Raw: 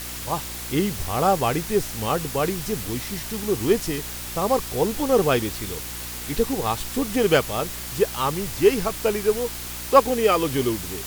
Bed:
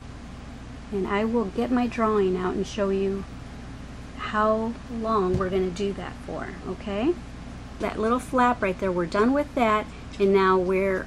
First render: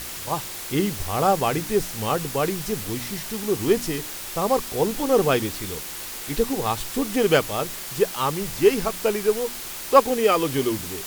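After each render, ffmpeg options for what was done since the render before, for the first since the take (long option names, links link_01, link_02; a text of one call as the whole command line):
ffmpeg -i in.wav -af "bandreject=frequency=60:width_type=h:width=4,bandreject=frequency=120:width_type=h:width=4,bandreject=frequency=180:width_type=h:width=4,bandreject=frequency=240:width_type=h:width=4,bandreject=frequency=300:width_type=h:width=4" out.wav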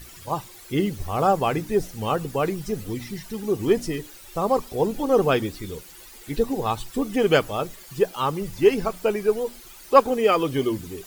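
ffmpeg -i in.wav -af "afftdn=noise_reduction=14:noise_floor=-34" out.wav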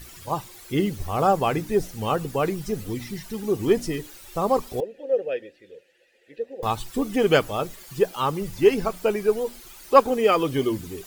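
ffmpeg -i in.wav -filter_complex "[0:a]asettb=1/sr,asplit=3[link_01][link_02][link_03];[link_01]atrim=end=4.804[link_04];[link_02]atrim=start=4.8:end=6.63,asetpts=PTS-STARTPTS,afade=type=in:duration=0.004:curve=qsin,afade=type=out:start_time=1.826:duration=0.004:curve=qsin,asplit=3[link_05][link_06][link_07];[link_05]bandpass=frequency=530:width_type=q:width=8,volume=0dB[link_08];[link_06]bandpass=frequency=1840:width_type=q:width=8,volume=-6dB[link_09];[link_07]bandpass=frequency=2480:width_type=q:width=8,volume=-9dB[link_10];[link_08][link_09][link_10]amix=inputs=3:normalize=0[link_11];[link_03]atrim=start=6.626[link_12];[link_04][link_11]acrossfade=duration=0.004:curve1=hsin:curve2=qsin[link_13];[link_13][link_12]acrossfade=duration=0.004:curve1=qsin:curve2=hsin" out.wav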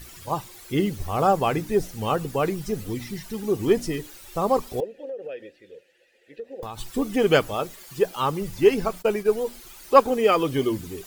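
ffmpeg -i in.wav -filter_complex "[0:a]asettb=1/sr,asplit=3[link_01][link_02][link_03];[link_01]atrim=end=5.024[link_04];[link_02]atrim=start=5.02:end=6.79,asetpts=PTS-STARTPTS,afade=type=in:duration=0.004:curve=qsin,afade=type=out:start_time=1.766:duration=0.004:curve=qsin,acompressor=threshold=-30dB:ratio=12:attack=3.2:release=140:knee=1:detection=peak[link_05];[link_03]atrim=start=6.786[link_06];[link_04][link_05]acrossfade=duration=0.004:curve1=hsin:curve2=qsin[link_07];[link_07][link_06]acrossfade=duration=0.004:curve1=qsin:curve2=hsin,asettb=1/sr,asplit=3[link_08][link_09][link_10];[link_08]atrim=end=7.544[link_11];[link_09]atrim=start=7.54:end=8.05,asetpts=PTS-STARTPTS,afade=type=in:duration=0.004:curve=qsin,afade=type=out:start_time=0.506:duration=0.004:curve=qsin,lowshelf=frequency=150:gain=-7.5[link_12];[link_10]atrim=start=8.046[link_13];[link_11][link_12]acrossfade=duration=0.004:curve1=hsin:curve2=qsin[link_14];[link_14][link_13]acrossfade=duration=0.004:curve1=qsin:curve2=hsin,asplit=3[link_15][link_16][link_17];[link_15]afade=type=out:start_time=9.01:duration=0.02[link_18];[link_16]agate=range=-33dB:threshold=-29dB:ratio=3:release=100:detection=peak,afade=type=in:start_time=9.01:duration=0.02,afade=type=out:start_time=9.44:duration=0.02[link_19];[link_17]afade=type=in:start_time=9.44:duration=0.02[link_20];[link_18][link_19][link_20]amix=inputs=3:normalize=0" out.wav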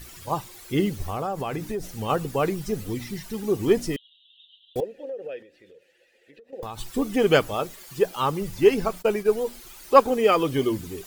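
ffmpeg -i in.wav -filter_complex "[0:a]asplit=3[link_01][link_02][link_03];[link_01]afade=type=out:start_time=1.07:duration=0.02[link_04];[link_02]acompressor=threshold=-25dB:ratio=6:attack=3.2:release=140:knee=1:detection=peak,afade=type=in:start_time=1.07:duration=0.02,afade=type=out:start_time=2.08:duration=0.02[link_05];[link_03]afade=type=in:start_time=2.08:duration=0.02[link_06];[link_04][link_05][link_06]amix=inputs=3:normalize=0,asettb=1/sr,asplit=3[link_07][link_08][link_09];[link_07]atrim=end=3.964[link_10];[link_08]atrim=start=3.96:end=4.76,asetpts=PTS-STARTPTS,afade=type=in:duration=0.004:curve=qsin,afade=type=out:start_time=0.796:duration=0.004:curve=qsin,asuperpass=centerf=3300:order=12:qfactor=3.3[link_11];[link_09]atrim=start=4.756[link_12];[link_10][link_11]acrossfade=duration=0.004:curve1=hsin:curve2=qsin[link_13];[link_13][link_12]acrossfade=duration=0.004:curve1=qsin:curve2=hsin,asettb=1/sr,asplit=3[link_14][link_15][link_16];[link_14]atrim=end=5.424[link_17];[link_15]atrim=start=5.42:end=6.53,asetpts=PTS-STARTPTS,afade=type=in:duration=0.004:curve=qsin,afade=type=out:start_time=1.106:duration=0.004:curve=qsin,acompressor=threshold=-47dB:ratio=10:attack=3.2:release=140:knee=1:detection=peak[link_18];[link_16]atrim=start=6.526[link_19];[link_17][link_18]acrossfade=duration=0.004:curve1=hsin:curve2=qsin[link_20];[link_20][link_19]acrossfade=duration=0.004:curve1=qsin:curve2=hsin" out.wav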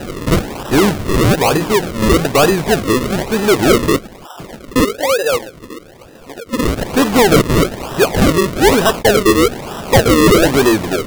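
ffmpeg -i in.wav -filter_complex "[0:a]asplit=2[link_01][link_02];[link_02]highpass=frequency=720:poles=1,volume=32dB,asoftclip=type=tanh:threshold=-1.5dB[link_03];[link_01][link_03]amix=inputs=2:normalize=0,lowpass=frequency=3800:poles=1,volume=-6dB,acrusher=samples=39:mix=1:aa=0.000001:lfo=1:lforange=39:lforate=1.1" out.wav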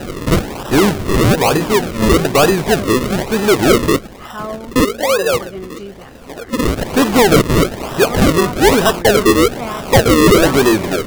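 ffmpeg -i in.wav -i bed.wav -filter_complex "[1:a]volume=-4.5dB[link_01];[0:a][link_01]amix=inputs=2:normalize=0" out.wav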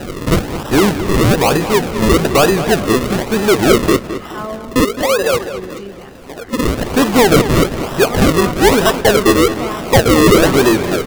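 ffmpeg -i in.wav -filter_complex "[0:a]asplit=2[link_01][link_02];[link_02]adelay=213,lowpass=frequency=4700:poles=1,volume=-11.5dB,asplit=2[link_03][link_04];[link_04]adelay=213,lowpass=frequency=4700:poles=1,volume=0.41,asplit=2[link_05][link_06];[link_06]adelay=213,lowpass=frequency=4700:poles=1,volume=0.41,asplit=2[link_07][link_08];[link_08]adelay=213,lowpass=frequency=4700:poles=1,volume=0.41[link_09];[link_01][link_03][link_05][link_07][link_09]amix=inputs=5:normalize=0" out.wav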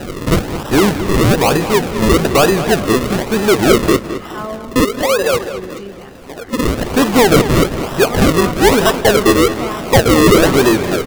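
ffmpeg -i in.wav -filter_complex "[0:a]asplit=2[link_01][link_02];[link_02]adelay=163.3,volume=-21dB,highshelf=frequency=4000:gain=-3.67[link_03];[link_01][link_03]amix=inputs=2:normalize=0" out.wav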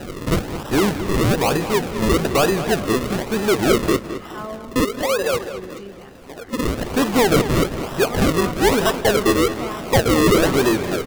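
ffmpeg -i in.wav -af "volume=-6dB" out.wav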